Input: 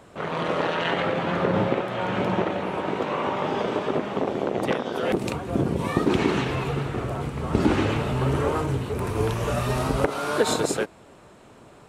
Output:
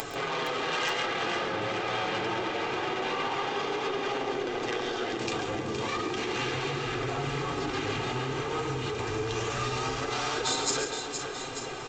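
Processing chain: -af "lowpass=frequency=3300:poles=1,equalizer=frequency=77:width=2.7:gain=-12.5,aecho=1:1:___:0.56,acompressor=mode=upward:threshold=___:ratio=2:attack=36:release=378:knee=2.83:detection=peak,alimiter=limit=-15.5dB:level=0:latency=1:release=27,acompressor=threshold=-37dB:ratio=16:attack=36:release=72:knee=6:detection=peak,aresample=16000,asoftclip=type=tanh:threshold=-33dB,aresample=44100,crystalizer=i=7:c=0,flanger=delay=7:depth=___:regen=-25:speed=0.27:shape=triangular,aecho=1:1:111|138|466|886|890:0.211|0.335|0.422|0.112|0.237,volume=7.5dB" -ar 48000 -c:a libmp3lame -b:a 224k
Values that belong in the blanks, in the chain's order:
2.5, -38dB, 2.5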